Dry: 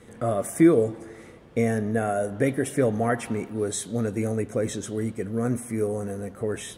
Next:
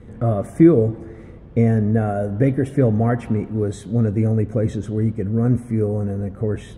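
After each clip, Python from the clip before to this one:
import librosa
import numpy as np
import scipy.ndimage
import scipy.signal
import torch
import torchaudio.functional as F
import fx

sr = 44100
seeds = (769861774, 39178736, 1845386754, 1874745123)

y = fx.riaa(x, sr, side='playback')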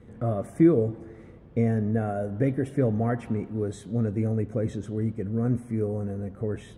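y = fx.low_shelf(x, sr, hz=61.0, db=-8.5)
y = y * 10.0 ** (-6.5 / 20.0)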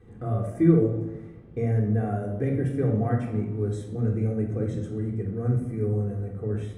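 y = fx.room_shoebox(x, sr, seeds[0], volume_m3=2000.0, walls='furnished', distance_m=3.7)
y = y * 10.0 ** (-5.5 / 20.0)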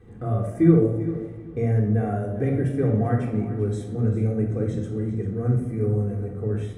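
y = fx.echo_feedback(x, sr, ms=395, feedback_pct=25, wet_db=-14.0)
y = y * 10.0 ** (2.5 / 20.0)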